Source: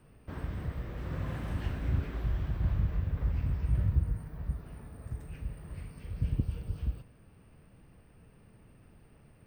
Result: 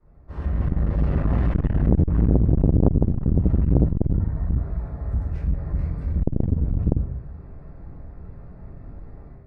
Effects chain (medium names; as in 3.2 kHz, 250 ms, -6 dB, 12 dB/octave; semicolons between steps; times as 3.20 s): local Wiener filter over 15 samples; 3.35–5.54 s: bass shelf 490 Hz -4 dB; low-pass that closes with the level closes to 440 Hz, closed at -25.5 dBFS; level rider gain up to 12.5 dB; feedback comb 80 Hz, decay 0.23 s, harmonics odd, mix 60%; one-sided clip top -27 dBFS, bottom -15 dBFS; simulated room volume 57 m³, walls mixed, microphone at 3.2 m; transformer saturation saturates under 320 Hz; trim -6.5 dB